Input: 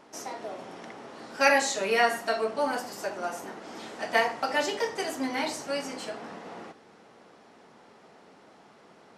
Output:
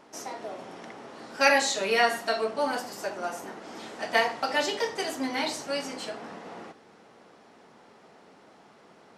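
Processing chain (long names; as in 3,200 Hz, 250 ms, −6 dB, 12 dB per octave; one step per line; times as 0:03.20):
dynamic equaliser 3,800 Hz, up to +5 dB, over −46 dBFS, Q 1.8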